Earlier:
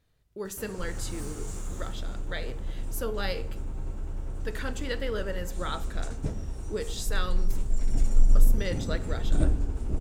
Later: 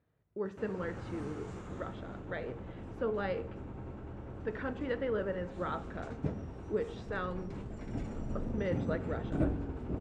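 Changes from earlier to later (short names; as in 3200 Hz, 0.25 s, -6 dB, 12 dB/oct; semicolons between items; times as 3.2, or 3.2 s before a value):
speech: add LPF 1400 Hz 6 dB/oct; master: add BPF 110–2400 Hz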